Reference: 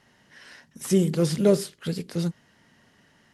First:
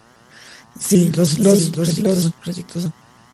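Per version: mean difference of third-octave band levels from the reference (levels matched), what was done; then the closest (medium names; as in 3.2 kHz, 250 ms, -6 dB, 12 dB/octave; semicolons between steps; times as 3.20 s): 4.5 dB: tone controls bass +5 dB, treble +8 dB; mains buzz 120 Hz, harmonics 13, -57 dBFS 0 dB/octave; on a send: delay 599 ms -4.5 dB; on the sum: vibrato with a chosen wave saw up 6.3 Hz, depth 160 cents; trim +4.5 dB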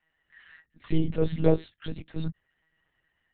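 9.0 dB: expander on every frequency bin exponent 1.5; band-stop 950 Hz, Q 6; monotone LPC vocoder at 8 kHz 160 Hz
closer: first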